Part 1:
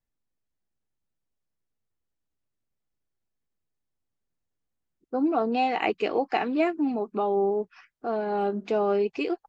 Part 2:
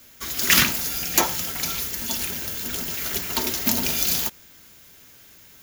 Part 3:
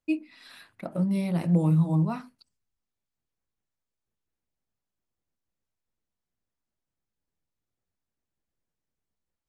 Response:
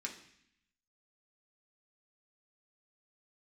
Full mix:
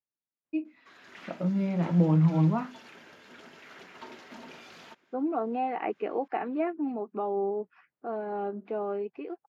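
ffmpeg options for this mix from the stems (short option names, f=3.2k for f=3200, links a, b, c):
-filter_complex "[0:a]acrossover=split=2700[a][b];[b]acompressor=threshold=-48dB:ratio=4:attack=1:release=60[c];[a][c]amix=inputs=2:normalize=0,volume=-12dB,asplit=2[d][e];[1:a]highpass=f=420:p=1,aeval=exprs='(tanh(17.8*val(0)+0.4)-tanh(0.4))/17.8':c=same,adelay=650,volume=-15dB[f];[2:a]adelay=450,volume=-4dB[g];[e]apad=whole_len=276889[h];[f][h]sidechaincompress=threshold=-37dB:ratio=8:attack=16:release=168[i];[d][i][g]amix=inputs=3:normalize=0,highpass=150,lowpass=2k,dynaudnorm=f=480:g=7:m=7dB"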